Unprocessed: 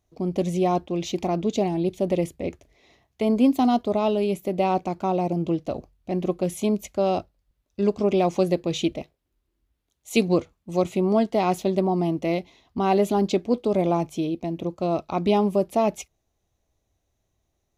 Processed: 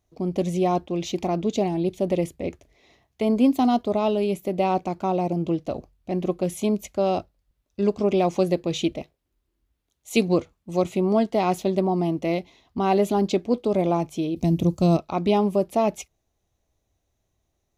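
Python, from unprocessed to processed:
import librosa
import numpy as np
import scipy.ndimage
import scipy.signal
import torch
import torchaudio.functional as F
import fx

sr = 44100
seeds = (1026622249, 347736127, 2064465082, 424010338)

y = fx.bass_treble(x, sr, bass_db=15, treble_db=15, at=(14.36, 14.97))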